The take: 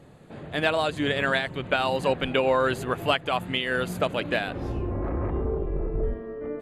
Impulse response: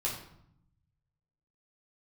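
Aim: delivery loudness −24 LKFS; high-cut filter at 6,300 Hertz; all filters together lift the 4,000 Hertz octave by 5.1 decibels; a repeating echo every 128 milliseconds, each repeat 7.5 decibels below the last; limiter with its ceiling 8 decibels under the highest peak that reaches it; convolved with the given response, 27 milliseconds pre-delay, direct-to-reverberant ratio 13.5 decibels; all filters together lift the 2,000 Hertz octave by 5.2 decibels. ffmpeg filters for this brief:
-filter_complex "[0:a]lowpass=6300,equalizer=frequency=2000:width_type=o:gain=6,equalizer=frequency=4000:width_type=o:gain=4.5,alimiter=limit=-12.5dB:level=0:latency=1,aecho=1:1:128|256|384|512|640:0.422|0.177|0.0744|0.0312|0.0131,asplit=2[link_01][link_02];[1:a]atrim=start_sample=2205,adelay=27[link_03];[link_02][link_03]afir=irnorm=-1:irlink=0,volume=-18dB[link_04];[link_01][link_04]amix=inputs=2:normalize=0,volume=1dB"

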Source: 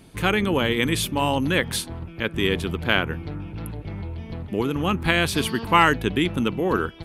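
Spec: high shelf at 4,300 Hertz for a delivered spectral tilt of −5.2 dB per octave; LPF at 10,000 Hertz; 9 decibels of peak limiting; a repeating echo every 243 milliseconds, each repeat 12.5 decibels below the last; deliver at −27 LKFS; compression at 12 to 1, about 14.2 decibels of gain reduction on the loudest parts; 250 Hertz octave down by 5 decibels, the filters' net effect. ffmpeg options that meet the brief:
ffmpeg -i in.wav -af "lowpass=10000,equalizer=frequency=250:width_type=o:gain=-7,highshelf=frequency=4300:gain=-6.5,acompressor=threshold=-26dB:ratio=12,alimiter=limit=-20dB:level=0:latency=1,aecho=1:1:243|486|729:0.237|0.0569|0.0137,volume=5.5dB" out.wav

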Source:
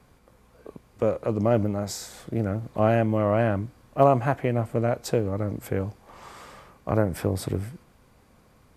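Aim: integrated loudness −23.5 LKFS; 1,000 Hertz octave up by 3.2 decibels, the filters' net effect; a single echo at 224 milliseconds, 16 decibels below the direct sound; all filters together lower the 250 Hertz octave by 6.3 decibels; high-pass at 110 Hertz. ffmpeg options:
ffmpeg -i in.wav -af "highpass=110,equalizer=frequency=250:width_type=o:gain=-8.5,equalizer=frequency=1000:width_type=o:gain=5.5,aecho=1:1:224:0.158,volume=3dB" out.wav

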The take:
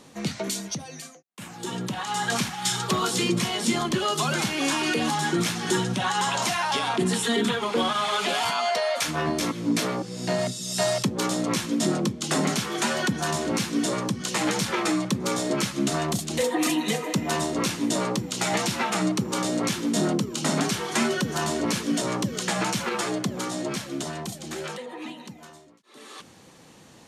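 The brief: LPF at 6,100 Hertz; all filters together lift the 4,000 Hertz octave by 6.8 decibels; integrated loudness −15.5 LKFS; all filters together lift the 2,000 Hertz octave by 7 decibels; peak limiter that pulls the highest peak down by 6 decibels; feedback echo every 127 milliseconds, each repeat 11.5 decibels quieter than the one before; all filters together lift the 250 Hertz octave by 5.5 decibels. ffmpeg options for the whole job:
ffmpeg -i in.wav -af "lowpass=6100,equalizer=frequency=250:width_type=o:gain=7,equalizer=frequency=2000:width_type=o:gain=7,equalizer=frequency=4000:width_type=o:gain=7,alimiter=limit=-11.5dB:level=0:latency=1,aecho=1:1:127|254|381:0.266|0.0718|0.0194,volume=6dB" out.wav

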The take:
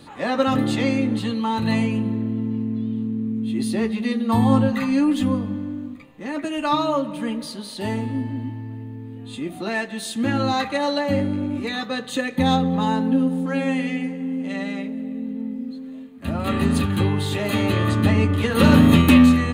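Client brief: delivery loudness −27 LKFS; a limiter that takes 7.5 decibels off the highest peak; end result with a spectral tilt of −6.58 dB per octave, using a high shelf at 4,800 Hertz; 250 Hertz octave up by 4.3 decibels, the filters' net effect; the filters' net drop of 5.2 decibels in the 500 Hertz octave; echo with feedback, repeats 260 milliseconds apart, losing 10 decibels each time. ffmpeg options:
ffmpeg -i in.wav -af "equalizer=frequency=250:width_type=o:gain=6.5,equalizer=frequency=500:width_type=o:gain=-8,highshelf=frequency=4800:gain=-8,alimiter=limit=-7dB:level=0:latency=1,aecho=1:1:260|520|780|1040:0.316|0.101|0.0324|0.0104,volume=-7.5dB" out.wav

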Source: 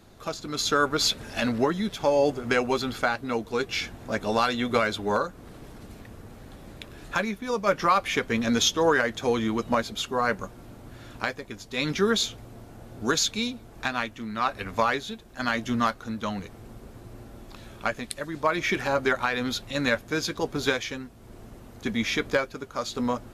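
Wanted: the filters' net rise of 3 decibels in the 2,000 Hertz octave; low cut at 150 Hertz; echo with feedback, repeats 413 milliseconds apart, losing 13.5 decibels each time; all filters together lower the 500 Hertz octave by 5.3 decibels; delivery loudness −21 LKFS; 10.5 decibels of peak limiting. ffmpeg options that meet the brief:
ffmpeg -i in.wav -af "highpass=150,equalizer=frequency=500:width_type=o:gain=-6.5,equalizer=frequency=2000:width_type=o:gain=4.5,alimiter=limit=-17.5dB:level=0:latency=1,aecho=1:1:413|826:0.211|0.0444,volume=9dB" out.wav

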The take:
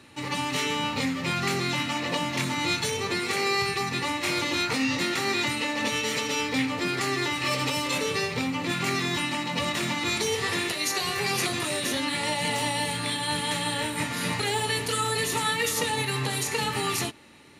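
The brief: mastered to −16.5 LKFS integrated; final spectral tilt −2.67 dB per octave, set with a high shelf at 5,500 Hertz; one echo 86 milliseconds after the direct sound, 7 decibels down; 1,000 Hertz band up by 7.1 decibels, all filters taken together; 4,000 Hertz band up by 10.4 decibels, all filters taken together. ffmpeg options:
ffmpeg -i in.wav -af "equalizer=frequency=1000:width_type=o:gain=8,equalizer=frequency=4000:width_type=o:gain=8.5,highshelf=frequency=5500:gain=9,aecho=1:1:86:0.447,volume=1.5dB" out.wav

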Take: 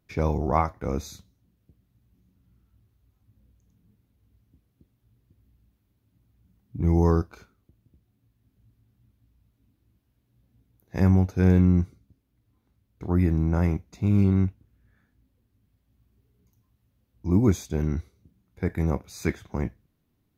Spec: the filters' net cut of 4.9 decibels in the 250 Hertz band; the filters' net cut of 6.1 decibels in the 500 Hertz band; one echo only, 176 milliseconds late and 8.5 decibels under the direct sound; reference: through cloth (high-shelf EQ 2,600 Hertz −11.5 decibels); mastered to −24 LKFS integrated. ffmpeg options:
ffmpeg -i in.wav -af "equalizer=frequency=250:width_type=o:gain=-6.5,equalizer=frequency=500:width_type=o:gain=-5,highshelf=frequency=2600:gain=-11.5,aecho=1:1:176:0.376,volume=3dB" out.wav

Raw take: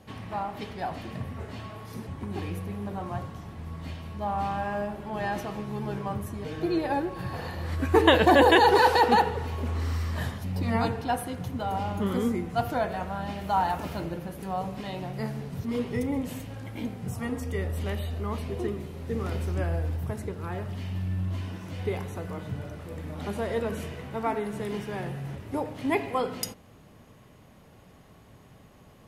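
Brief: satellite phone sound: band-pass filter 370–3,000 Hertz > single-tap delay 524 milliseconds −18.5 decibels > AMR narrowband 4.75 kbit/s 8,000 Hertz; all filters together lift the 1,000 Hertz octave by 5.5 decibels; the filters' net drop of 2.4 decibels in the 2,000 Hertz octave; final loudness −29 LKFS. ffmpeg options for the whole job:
ffmpeg -i in.wav -af "highpass=370,lowpass=3000,equalizer=frequency=1000:width_type=o:gain=8,equalizer=frequency=2000:width_type=o:gain=-5.5,aecho=1:1:524:0.119,volume=-1dB" -ar 8000 -c:a libopencore_amrnb -b:a 4750 out.amr

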